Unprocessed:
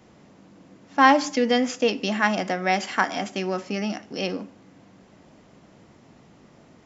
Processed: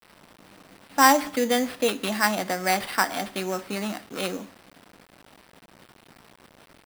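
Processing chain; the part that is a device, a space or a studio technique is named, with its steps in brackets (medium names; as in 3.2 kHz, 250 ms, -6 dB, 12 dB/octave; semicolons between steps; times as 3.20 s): 1.04–1.78 s: low-pass 4.3 kHz 12 dB/octave; early 8-bit sampler (sample-rate reducer 6.7 kHz, jitter 0%; bit crusher 8-bit); bass shelf 470 Hz -4 dB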